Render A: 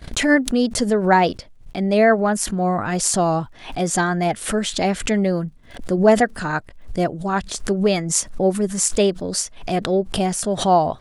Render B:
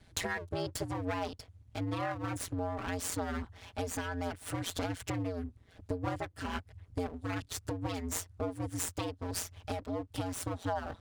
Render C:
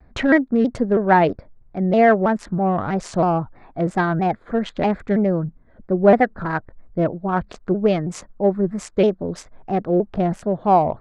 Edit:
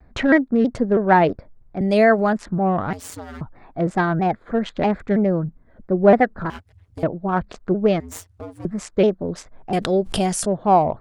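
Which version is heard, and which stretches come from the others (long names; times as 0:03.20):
C
0:01.81–0:02.33: punch in from A
0:02.93–0:03.41: punch in from B
0:06.50–0:07.03: punch in from B
0:08.00–0:08.65: punch in from B
0:09.73–0:10.46: punch in from A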